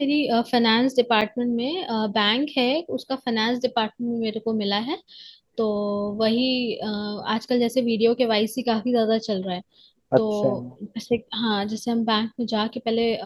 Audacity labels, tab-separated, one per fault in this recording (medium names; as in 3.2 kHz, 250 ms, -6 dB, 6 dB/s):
1.210000	1.220000	dropout 6.1 ms